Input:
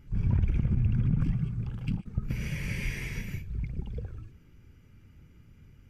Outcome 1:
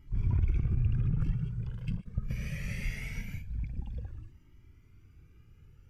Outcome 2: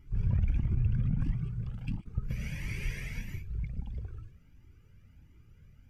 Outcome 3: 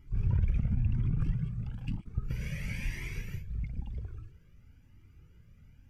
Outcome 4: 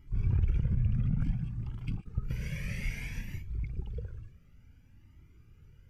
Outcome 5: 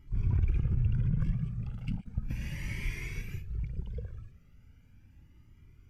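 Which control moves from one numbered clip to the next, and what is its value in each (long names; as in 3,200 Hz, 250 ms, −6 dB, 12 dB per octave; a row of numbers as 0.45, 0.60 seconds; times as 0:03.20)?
flanger whose copies keep moving one way, speed: 0.22, 1.5, 1, 0.58, 0.36 Hertz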